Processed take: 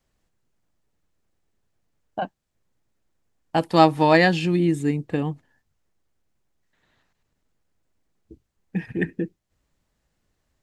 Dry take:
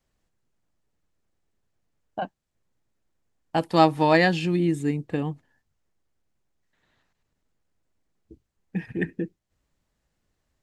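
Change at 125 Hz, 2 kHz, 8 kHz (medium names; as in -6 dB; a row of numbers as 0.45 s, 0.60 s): +2.5 dB, +2.5 dB, +2.5 dB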